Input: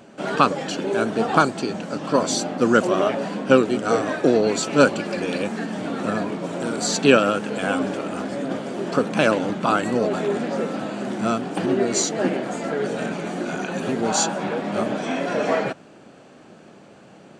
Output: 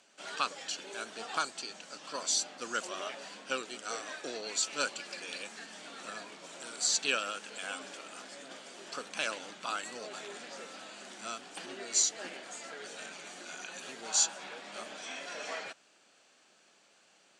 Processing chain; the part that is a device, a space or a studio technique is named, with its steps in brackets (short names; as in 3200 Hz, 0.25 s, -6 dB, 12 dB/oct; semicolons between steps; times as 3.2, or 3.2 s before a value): piezo pickup straight into a mixer (LPF 7000 Hz 12 dB/oct; differentiator)